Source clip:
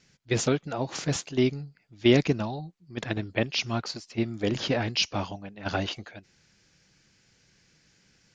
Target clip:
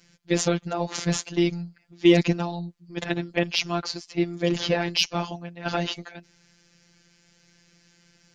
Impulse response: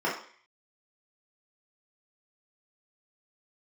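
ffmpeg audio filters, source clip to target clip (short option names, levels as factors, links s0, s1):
-af "afftfilt=real='hypot(re,im)*cos(PI*b)':imag='0':win_size=1024:overlap=0.75,acontrast=74"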